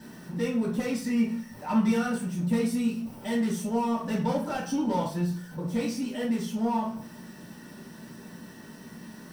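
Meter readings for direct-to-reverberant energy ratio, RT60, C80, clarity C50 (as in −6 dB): −7.5 dB, 0.45 s, 11.5 dB, 6.0 dB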